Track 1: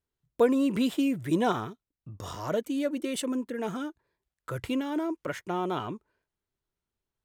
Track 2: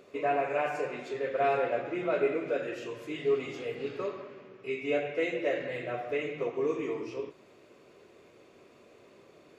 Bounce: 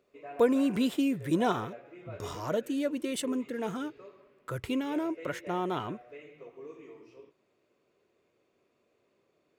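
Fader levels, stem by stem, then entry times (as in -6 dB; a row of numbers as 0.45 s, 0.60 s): -1.5 dB, -16.0 dB; 0.00 s, 0.00 s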